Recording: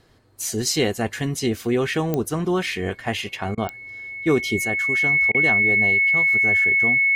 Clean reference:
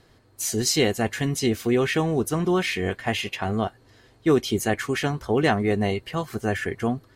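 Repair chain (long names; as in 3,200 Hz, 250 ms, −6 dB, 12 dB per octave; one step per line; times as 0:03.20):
click removal
notch filter 2,200 Hz, Q 30
repair the gap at 0:03.55/0:05.32, 24 ms
level 0 dB, from 0:04.65 +5 dB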